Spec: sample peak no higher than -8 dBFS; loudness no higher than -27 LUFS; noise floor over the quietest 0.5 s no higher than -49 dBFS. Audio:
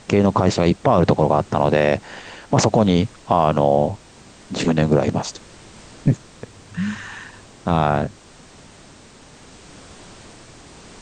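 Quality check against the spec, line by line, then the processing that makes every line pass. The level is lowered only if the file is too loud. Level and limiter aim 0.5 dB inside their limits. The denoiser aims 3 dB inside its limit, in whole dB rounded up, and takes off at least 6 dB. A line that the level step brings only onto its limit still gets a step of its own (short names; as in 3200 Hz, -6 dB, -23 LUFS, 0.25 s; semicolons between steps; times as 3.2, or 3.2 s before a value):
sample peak -4.5 dBFS: fail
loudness -19.0 LUFS: fail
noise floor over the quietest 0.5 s -45 dBFS: fail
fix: gain -8.5 dB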